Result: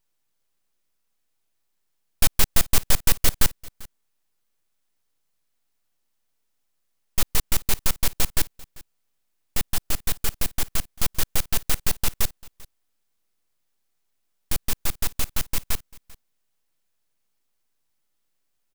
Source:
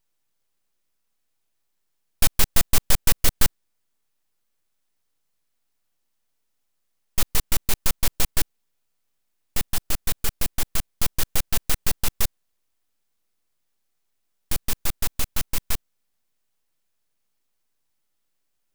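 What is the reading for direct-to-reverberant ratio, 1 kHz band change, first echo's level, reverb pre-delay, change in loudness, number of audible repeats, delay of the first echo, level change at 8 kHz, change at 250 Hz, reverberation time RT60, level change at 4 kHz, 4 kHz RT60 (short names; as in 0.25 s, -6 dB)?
none, 0.0 dB, -22.5 dB, none, 0.0 dB, 1, 0.393 s, 0.0 dB, 0.0 dB, none, 0.0 dB, none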